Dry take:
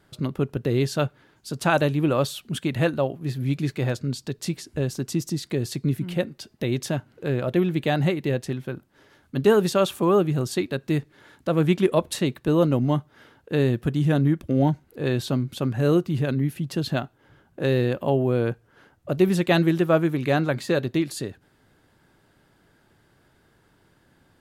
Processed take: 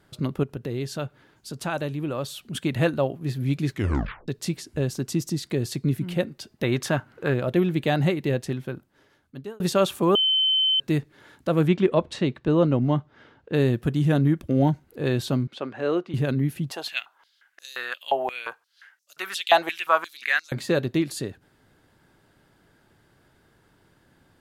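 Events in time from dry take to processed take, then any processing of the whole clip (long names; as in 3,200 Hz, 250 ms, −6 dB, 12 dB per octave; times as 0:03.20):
0:00.43–0:02.55: downward compressor 1.5 to 1, threshold −38 dBFS
0:03.70: tape stop 0.58 s
0:06.63–0:07.34: parametric band 1,300 Hz +9.5 dB 1.7 octaves
0:08.61–0:09.60: fade out
0:10.15–0:10.80: beep over 3,070 Hz −18 dBFS
0:11.68–0:13.54: high-frequency loss of the air 120 metres
0:15.47–0:16.14: band-pass filter 410–3,400 Hz
0:16.71–0:20.52: high-pass on a step sequencer 5.7 Hz 770–5,700 Hz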